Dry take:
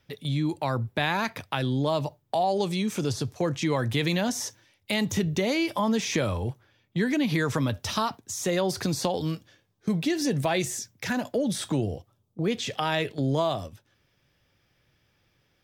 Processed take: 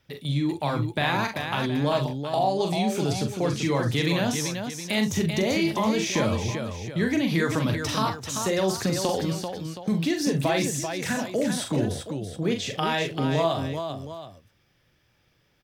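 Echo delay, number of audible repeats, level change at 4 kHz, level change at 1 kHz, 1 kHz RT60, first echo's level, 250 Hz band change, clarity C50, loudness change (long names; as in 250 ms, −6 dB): 42 ms, 3, +2.0 dB, +2.0 dB, no reverb audible, −5.5 dB, +2.0 dB, no reverb audible, +1.5 dB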